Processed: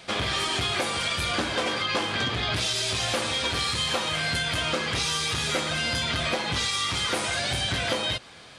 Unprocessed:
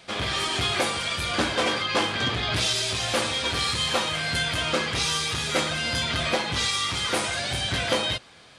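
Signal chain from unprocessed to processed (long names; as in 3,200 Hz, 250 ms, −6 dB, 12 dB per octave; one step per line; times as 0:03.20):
downward compressor, threshold −27 dBFS, peak gain reduction 8.5 dB
level +3.5 dB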